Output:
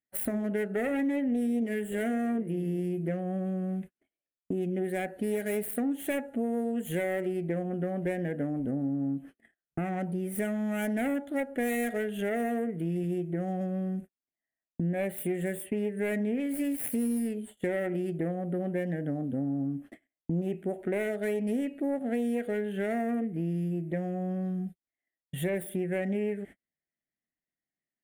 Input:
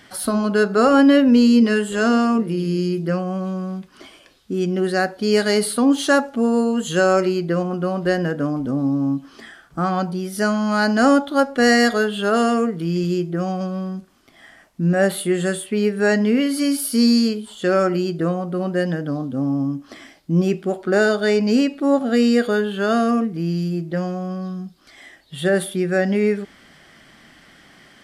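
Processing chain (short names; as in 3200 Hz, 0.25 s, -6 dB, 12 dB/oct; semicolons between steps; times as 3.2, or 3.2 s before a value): self-modulated delay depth 0.28 ms; gate -36 dBFS, range -47 dB; EQ curve 700 Hz 0 dB, 1100 Hz -18 dB, 1900 Hz +1 dB, 2700 Hz -6 dB, 5000 Hz -25 dB, 9400 Hz +1 dB; compressor 4:1, threshold -30 dBFS, peak gain reduction 16.5 dB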